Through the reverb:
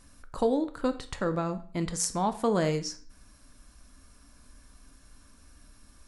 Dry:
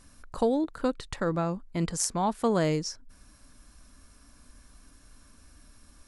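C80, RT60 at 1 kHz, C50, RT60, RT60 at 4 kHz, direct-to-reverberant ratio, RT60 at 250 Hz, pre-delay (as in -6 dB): 18.0 dB, 0.50 s, 14.5 dB, 0.50 s, 0.40 s, 9.0 dB, 0.50 s, 11 ms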